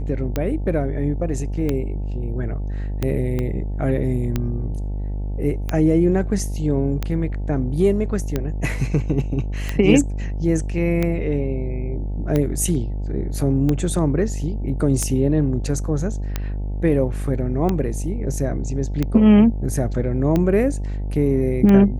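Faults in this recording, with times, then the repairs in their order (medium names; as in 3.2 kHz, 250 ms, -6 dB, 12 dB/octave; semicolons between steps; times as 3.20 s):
buzz 50 Hz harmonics 18 -25 dBFS
tick 45 rpm -9 dBFS
3.39 s: pop -13 dBFS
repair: de-click; de-hum 50 Hz, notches 18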